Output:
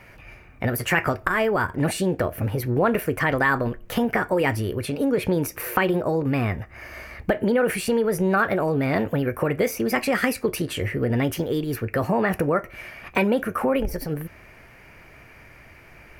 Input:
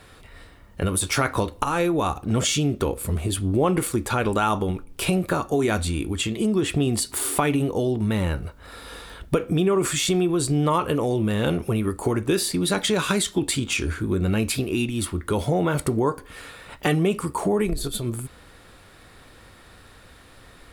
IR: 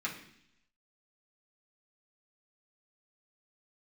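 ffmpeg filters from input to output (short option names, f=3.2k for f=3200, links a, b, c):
-af "highshelf=f=2.3k:t=q:w=3:g=-6.5,asetrate=56448,aresample=44100"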